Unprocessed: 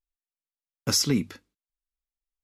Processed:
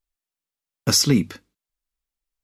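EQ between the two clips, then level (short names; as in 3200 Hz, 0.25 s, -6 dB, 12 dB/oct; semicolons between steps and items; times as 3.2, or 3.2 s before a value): bell 150 Hz +2.5 dB; +5.5 dB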